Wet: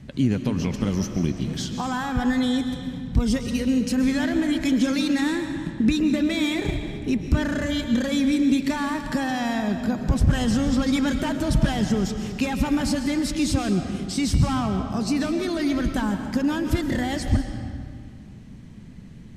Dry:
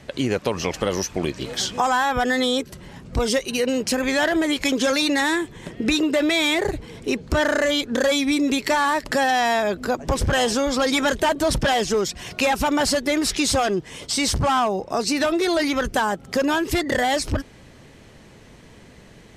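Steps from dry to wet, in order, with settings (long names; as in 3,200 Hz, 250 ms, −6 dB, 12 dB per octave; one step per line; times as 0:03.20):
low shelf with overshoot 320 Hz +12.5 dB, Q 1.5
convolution reverb RT60 2.0 s, pre-delay 90 ms, DRR 6 dB
level −8.5 dB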